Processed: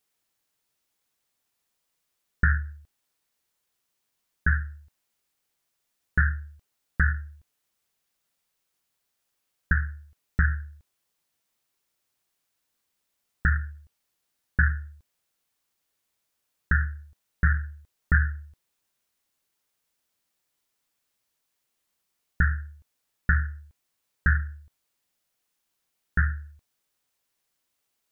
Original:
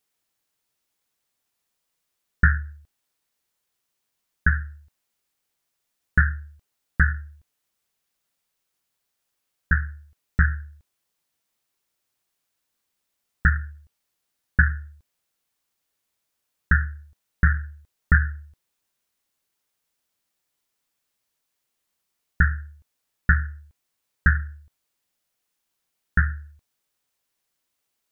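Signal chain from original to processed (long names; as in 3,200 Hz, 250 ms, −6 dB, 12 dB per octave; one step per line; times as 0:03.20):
brickwall limiter −10.5 dBFS, peak gain reduction 6 dB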